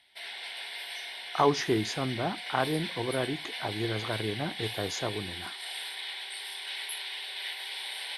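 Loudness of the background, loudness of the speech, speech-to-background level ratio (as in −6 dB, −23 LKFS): −36.5 LKFS, −31.5 LKFS, 5.0 dB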